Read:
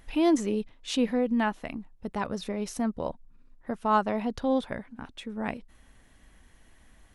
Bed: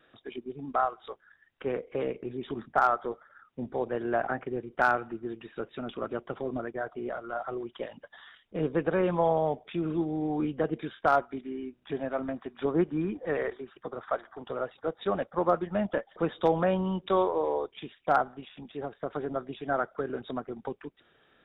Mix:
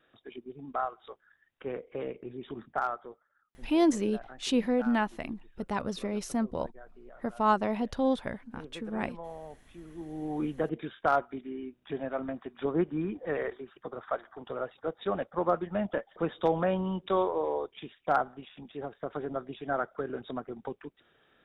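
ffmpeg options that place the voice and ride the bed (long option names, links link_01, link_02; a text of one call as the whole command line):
ffmpeg -i stem1.wav -i stem2.wav -filter_complex "[0:a]adelay=3550,volume=-1dB[link_01];[1:a]volume=10.5dB,afade=type=out:start_time=2.67:duration=0.57:silence=0.237137,afade=type=in:start_time=9.93:duration=0.51:silence=0.16788[link_02];[link_01][link_02]amix=inputs=2:normalize=0" out.wav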